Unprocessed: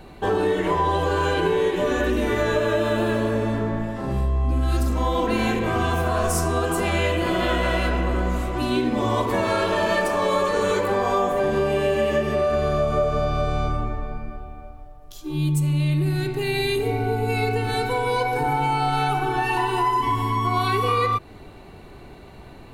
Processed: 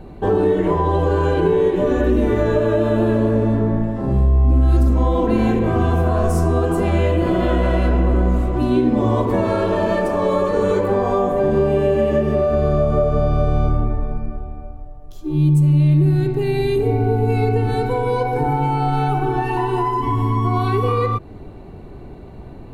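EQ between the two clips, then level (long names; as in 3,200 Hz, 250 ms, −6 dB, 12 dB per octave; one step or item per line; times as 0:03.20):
tilt shelving filter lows +8 dB
0.0 dB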